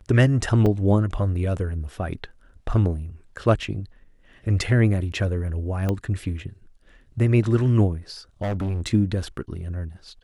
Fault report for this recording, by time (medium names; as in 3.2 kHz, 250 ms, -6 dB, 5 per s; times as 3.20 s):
0.66 s: dropout 4.1 ms
5.89 s: pop -13 dBFS
8.42–8.88 s: clipped -22.5 dBFS